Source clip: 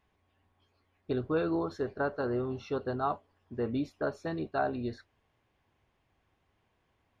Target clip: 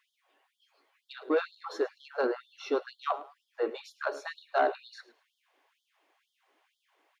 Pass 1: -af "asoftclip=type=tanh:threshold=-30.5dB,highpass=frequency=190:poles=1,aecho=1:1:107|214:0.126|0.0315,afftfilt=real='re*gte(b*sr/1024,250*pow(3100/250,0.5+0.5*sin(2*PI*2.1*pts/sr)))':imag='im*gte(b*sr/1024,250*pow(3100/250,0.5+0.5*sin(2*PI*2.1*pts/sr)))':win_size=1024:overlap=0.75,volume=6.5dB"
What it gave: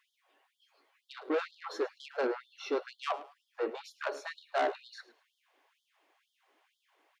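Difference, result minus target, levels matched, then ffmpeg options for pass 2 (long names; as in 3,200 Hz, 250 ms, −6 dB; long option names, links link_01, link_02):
soft clipping: distortion +10 dB
-af "asoftclip=type=tanh:threshold=-22dB,highpass=frequency=190:poles=1,aecho=1:1:107|214:0.126|0.0315,afftfilt=real='re*gte(b*sr/1024,250*pow(3100/250,0.5+0.5*sin(2*PI*2.1*pts/sr)))':imag='im*gte(b*sr/1024,250*pow(3100/250,0.5+0.5*sin(2*PI*2.1*pts/sr)))':win_size=1024:overlap=0.75,volume=6.5dB"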